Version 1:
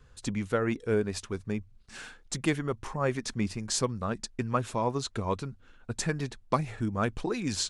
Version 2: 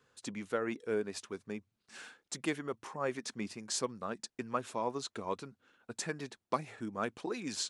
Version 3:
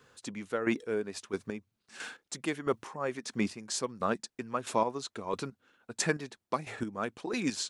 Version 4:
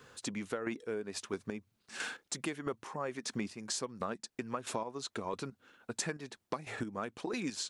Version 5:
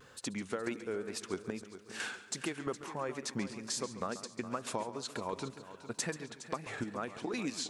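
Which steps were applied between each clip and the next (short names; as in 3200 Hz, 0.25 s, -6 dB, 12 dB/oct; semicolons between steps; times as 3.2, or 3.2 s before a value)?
HPF 240 Hz 12 dB/oct; gain -5.5 dB
chopper 1.5 Hz, depth 60%, duty 25%; gain +9 dB
compressor 6:1, threshold -39 dBFS, peak gain reduction 16 dB; gain +4.5 dB
multi-head echo 0.138 s, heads first and third, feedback 46%, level -14 dB; wow and flutter 56 cents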